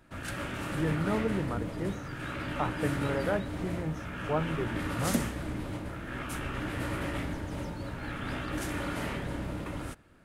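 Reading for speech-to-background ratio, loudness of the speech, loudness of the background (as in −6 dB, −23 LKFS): 1.0 dB, −34.5 LKFS, −35.5 LKFS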